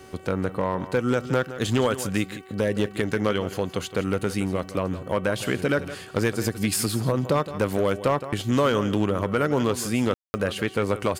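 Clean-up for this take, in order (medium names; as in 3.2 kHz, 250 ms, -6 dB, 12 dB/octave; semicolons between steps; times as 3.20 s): clip repair -14 dBFS; de-hum 378.8 Hz, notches 8; room tone fill 10.14–10.34 s; inverse comb 166 ms -14 dB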